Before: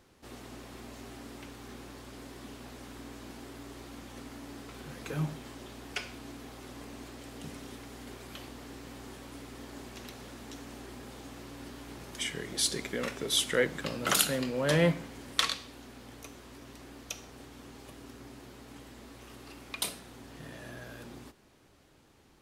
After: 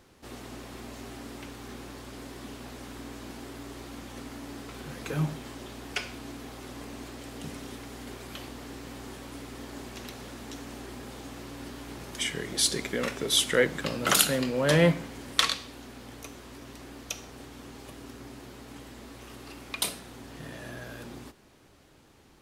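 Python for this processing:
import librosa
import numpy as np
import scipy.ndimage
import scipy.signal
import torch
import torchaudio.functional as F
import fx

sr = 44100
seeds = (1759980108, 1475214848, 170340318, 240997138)

y = F.gain(torch.from_numpy(x), 4.0).numpy()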